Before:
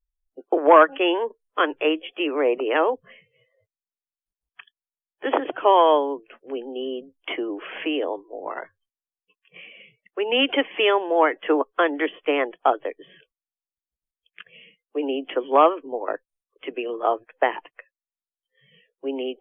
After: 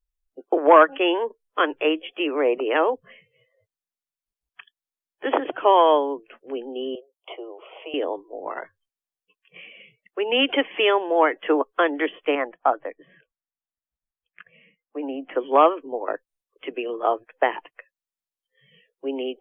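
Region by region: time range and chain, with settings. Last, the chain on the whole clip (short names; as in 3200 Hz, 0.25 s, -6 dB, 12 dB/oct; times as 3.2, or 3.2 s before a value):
6.95–7.94 elliptic high-pass 320 Hz + bell 2200 Hz -4 dB 2.2 oct + fixed phaser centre 690 Hz, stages 4
12.35–15.35 LPF 2100 Hz 24 dB/oct + bell 400 Hz -9.5 dB 0.49 oct
whole clip: dry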